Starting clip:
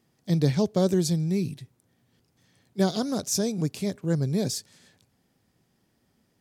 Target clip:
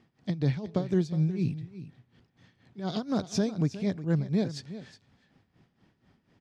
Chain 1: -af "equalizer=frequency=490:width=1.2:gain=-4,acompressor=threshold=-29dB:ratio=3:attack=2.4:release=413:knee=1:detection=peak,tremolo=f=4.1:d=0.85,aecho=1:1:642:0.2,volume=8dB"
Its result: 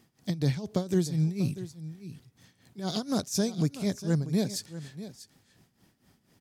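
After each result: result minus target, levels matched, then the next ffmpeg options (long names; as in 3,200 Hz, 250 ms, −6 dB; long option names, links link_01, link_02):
echo 278 ms late; 4,000 Hz band +5.0 dB
-af "equalizer=frequency=490:width=1.2:gain=-4,acompressor=threshold=-29dB:ratio=3:attack=2.4:release=413:knee=1:detection=peak,tremolo=f=4.1:d=0.85,aecho=1:1:364:0.2,volume=8dB"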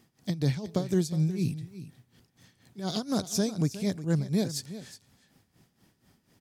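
4,000 Hz band +4.5 dB
-af "lowpass=3200,equalizer=frequency=490:width=1.2:gain=-4,acompressor=threshold=-29dB:ratio=3:attack=2.4:release=413:knee=1:detection=peak,tremolo=f=4.1:d=0.85,aecho=1:1:364:0.2,volume=8dB"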